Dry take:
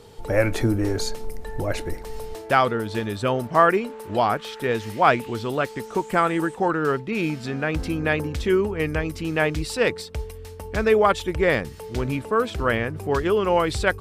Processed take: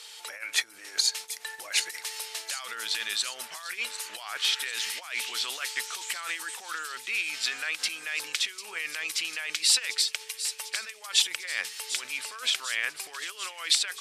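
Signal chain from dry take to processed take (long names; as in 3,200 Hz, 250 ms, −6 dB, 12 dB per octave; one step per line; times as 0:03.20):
compressor whose output falls as the input rises −28 dBFS, ratio −1
flat-topped band-pass 5,500 Hz, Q 0.58
delay with a high-pass on its return 747 ms, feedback 71%, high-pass 5,500 Hz, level −7.5 dB
level +7.5 dB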